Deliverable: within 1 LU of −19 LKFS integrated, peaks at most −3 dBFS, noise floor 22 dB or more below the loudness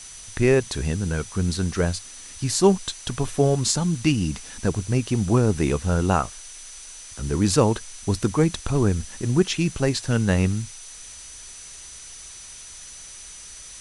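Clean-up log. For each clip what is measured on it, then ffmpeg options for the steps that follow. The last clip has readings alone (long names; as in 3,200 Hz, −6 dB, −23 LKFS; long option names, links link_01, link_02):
interfering tone 6,000 Hz; level of the tone −43 dBFS; background noise floor −41 dBFS; target noise floor −45 dBFS; integrated loudness −23.0 LKFS; sample peak −3.5 dBFS; target loudness −19.0 LKFS
→ -af "bandreject=frequency=6000:width=30"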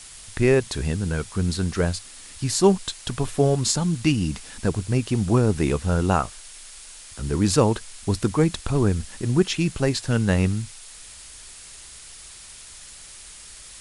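interfering tone none found; background noise floor −43 dBFS; target noise floor −45 dBFS
→ -af "afftdn=noise_reduction=6:noise_floor=-43"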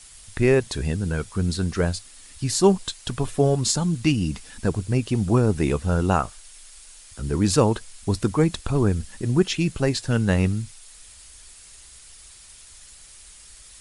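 background noise floor −47 dBFS; integrated loudness −23.0 LKFS; sample peak −4.0 dBFS; target loudness −19.0 LKFS
→ -af "volume=4dB,alimiter=limit=-3dB:level=0:latency=1"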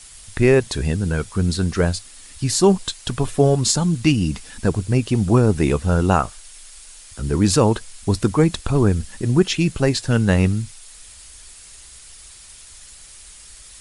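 integrated loudness −19.5 LKFS; sample peak −3.0 dBFS; background noise floor −43 dBFS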